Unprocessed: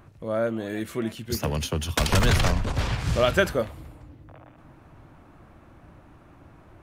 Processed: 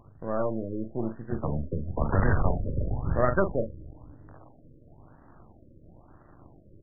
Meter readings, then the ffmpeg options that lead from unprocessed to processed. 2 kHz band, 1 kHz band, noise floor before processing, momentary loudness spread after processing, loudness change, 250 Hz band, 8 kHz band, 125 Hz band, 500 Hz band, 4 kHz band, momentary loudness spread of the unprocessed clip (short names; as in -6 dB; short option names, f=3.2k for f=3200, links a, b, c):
-8.5 dB, -2.5 dB, -52 dBFS, 9 LU, -4.0 dB, -2.0 dB, under -40 dB, -3.0 dB, -3.0 dB, under -40 dB, 10 LU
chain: -filter_complex "[0:a]aeval=exprs='if(lt(val(0),0),0.251*val(0),val(0))':c=same,asplit=2[a][b];[b]adelay=41,volume=-8dB[c];[a][c]amix=inputs=2:normalize=0,afftfilt=real='re*lt(b*sr/1024,580*pow(2000/580,0.5+0.5*sin(2*PI*1*pts/sr)))':imag='im*lt(b*sr/1024,580*pow(2000/580,0.5+0.5*sin(2*PI*1*pts/sr)))':win_size=1024:overlap=0.75"